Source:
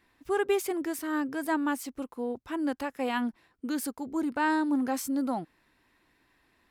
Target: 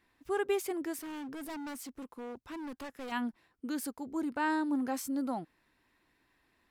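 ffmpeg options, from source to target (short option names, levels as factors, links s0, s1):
-filter_complex "[0:a]asettb=1/sr,asplit=3[s0][s1][s2];[s0]atrim=end=1.024[s3];[s1]atrim=start=1.02:end=3.12,asetpts=PTS-STARTPTS,afade=t=in:d=0.004:c=qsin,afade=t=out:st=2.096:d=0.004:c=qsin,asoftclip=type=hard:threshold=0.0178[s4];[s2]atrim=start=3.116[s5];[s3][s4]acrossfade=d=0.004:c1=hsin:c2=qsin[s6];[s6][s5]acrossfade=d=0.004:c1=qsin:c2=hsin,volume=0.596"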